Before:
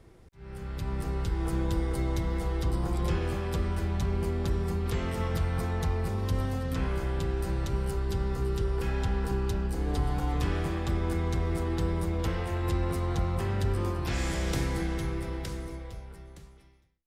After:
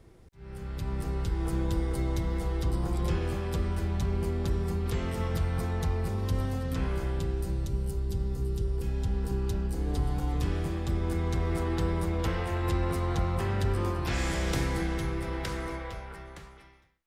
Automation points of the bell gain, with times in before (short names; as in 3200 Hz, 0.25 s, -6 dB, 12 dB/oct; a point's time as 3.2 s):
bell 1400 Hz 2.8 oct
7.06 s -2 dB
7.74 s -14 dB
8.93 s -14 dB
9.52 s -5.5 dB
10.87 s -5.5 dB
11.57 s +2.5 dB
15.17 s +2.5 dB
15.69 s +12.5 dB